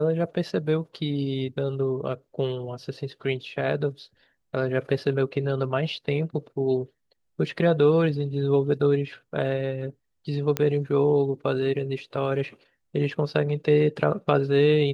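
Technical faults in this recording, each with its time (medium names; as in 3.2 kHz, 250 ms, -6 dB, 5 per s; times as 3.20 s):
10.57 s: pop -9 dBFS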